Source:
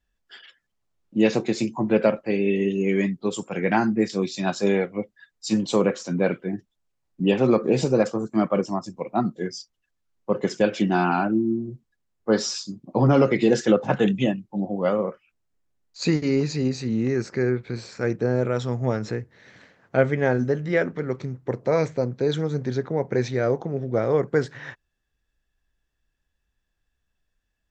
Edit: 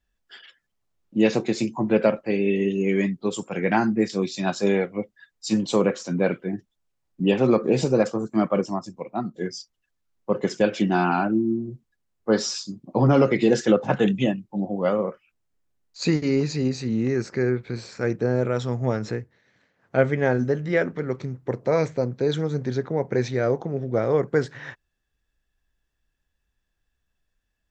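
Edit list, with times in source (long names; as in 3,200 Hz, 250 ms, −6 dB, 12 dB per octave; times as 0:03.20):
0:08.63–0:09.34: fade out, to −7 dB
0:19.15–0:20.00: duck −13.5 dB, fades 0.27 s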